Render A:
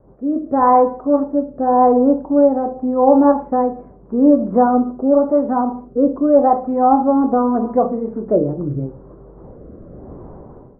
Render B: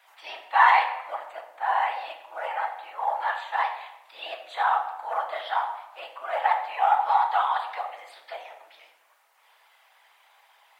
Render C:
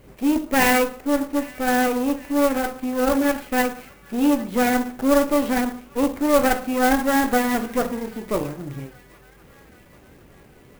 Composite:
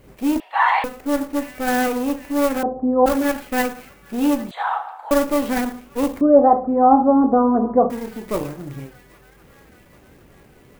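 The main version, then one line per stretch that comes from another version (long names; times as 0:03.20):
C
0:00.40–0:00.84: punch in from B
0:02.63–0:03.06: punch in from A
0:04.51–0:05.11: punch in from B
0:06.21–0:07.90: punch in from A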